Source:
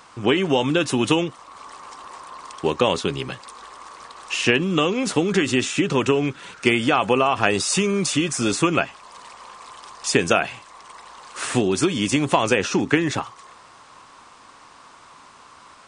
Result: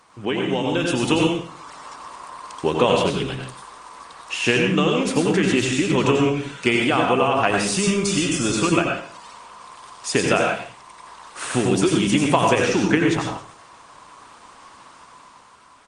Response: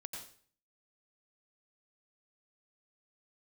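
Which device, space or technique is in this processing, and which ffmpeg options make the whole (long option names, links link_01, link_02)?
speakerphone in a meeting room: -filter_complex "[1:a]atrim=start_sample=2205[link_01];[0:a][link_01]afir=irnorm=-1:irlink=0,asplit=2[link_02][link_03];[link_03]adelay=140,highpass=300,lowpass=3400,asoftclip=type=hard:threshold=-13.5dB,volume=-29dB[link_04];[link_02][link_04]amix=inputs=2:normalize=0,dynaudnorm=framelen=160:gausssize=13:maxgain=7dB" -ar 48000 -c:a libopus -b:a 24k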